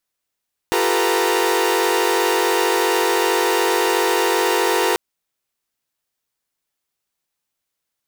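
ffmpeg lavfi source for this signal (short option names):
-f lavfi -i "aevalsrc='0.1*((2*mod(349.23*t,1)-1)+(2*mod(392*t,1)-1)+(2*mod(440*t,1)-1)+(2*mod(493.88*t,1)-1)+(2*mod(932.33*t,1)-1))':d=4.24:s=44100"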